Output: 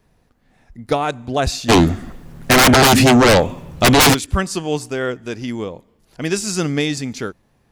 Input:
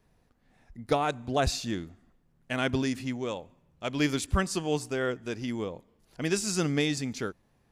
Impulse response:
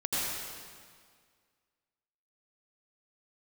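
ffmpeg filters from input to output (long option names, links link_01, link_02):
-filter_complex "[0:a]asplit=3[link_01][link_02][link_03];[link_01]afade=type=out:start_time=1.68:duration=0.02[link_04];[link_02]aeval=exprs='0.188*sin(PI/2*8.91*val(0)/0.188)':channel_layout=same,afade=type=in:start_time=1.68:duration=0.02,afade=type=out:start_time=4.13:duration=0.02[link_05];[link_03]afade=type=in:start_time=4.13:duration=0.02[link_06];[link_04][link_05][link_06]amix=inputs=3:normalize=0,volume=7.5dB"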